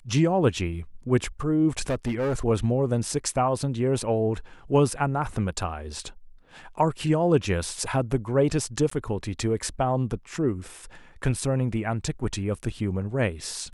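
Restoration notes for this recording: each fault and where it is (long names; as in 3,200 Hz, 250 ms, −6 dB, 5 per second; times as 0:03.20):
0:01.88–0:02.35: clipping −22 dBFS
0:08.90–0:08.91: drop-out 14 ms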